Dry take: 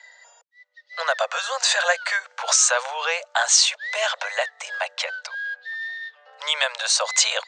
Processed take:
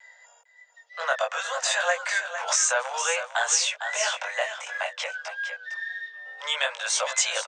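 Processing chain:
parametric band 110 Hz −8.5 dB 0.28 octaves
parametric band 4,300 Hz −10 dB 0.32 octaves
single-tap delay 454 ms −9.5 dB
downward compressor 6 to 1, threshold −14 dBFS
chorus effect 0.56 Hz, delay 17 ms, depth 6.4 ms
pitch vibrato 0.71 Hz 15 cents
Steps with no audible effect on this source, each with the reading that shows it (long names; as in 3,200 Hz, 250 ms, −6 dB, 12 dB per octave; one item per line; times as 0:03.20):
parametric band 110 Hz: nothing at its input below 400 Hz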